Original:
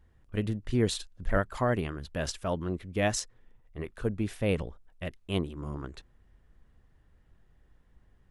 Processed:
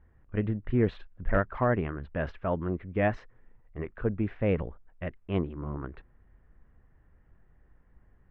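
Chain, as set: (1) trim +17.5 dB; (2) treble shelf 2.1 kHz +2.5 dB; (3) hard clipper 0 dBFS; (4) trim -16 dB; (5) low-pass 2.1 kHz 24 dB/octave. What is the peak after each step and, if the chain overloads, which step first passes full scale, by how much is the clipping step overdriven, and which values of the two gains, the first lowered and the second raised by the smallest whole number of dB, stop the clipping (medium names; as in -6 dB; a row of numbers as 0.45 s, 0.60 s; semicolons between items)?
+5.0 dBFS, +6.5 dBFS, 0.0 dBFS, -16.0 dBFS, -15.0 dBFS; step 1, 6.5 dB; step 1 +10.5 dB, step 4 -9 dB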